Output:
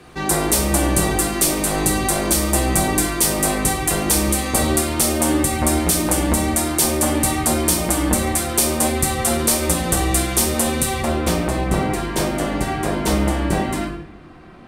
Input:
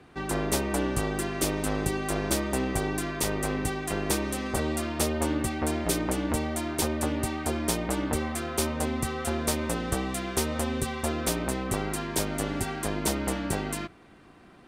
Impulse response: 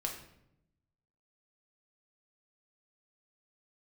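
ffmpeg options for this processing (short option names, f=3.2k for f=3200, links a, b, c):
-filter_complex "[0:a]asetnsamples=n=441:p=0,asendcmd='11.02 equalizer g -5.5',equalizer=f=12k:t=o:w=2:g=10.5[a];[1:a]atrim=start_sample=2205[b];[a][b]afir=irnorm=-1:irlink=0,alimiter=limit=-12.5dB:level=0:latency=1:release=254,volume=8dB"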